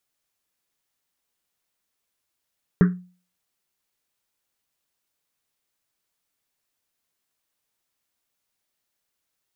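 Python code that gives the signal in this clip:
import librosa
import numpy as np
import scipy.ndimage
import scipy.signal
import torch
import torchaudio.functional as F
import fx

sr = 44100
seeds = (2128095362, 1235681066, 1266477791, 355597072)

y = fx.risset_drum(sr, seeds[0], length_s=1.1, hz=180.0, decay_s=0.39, noise_hz=1500.0, noise_width_hz=680.0, noise_pct=10)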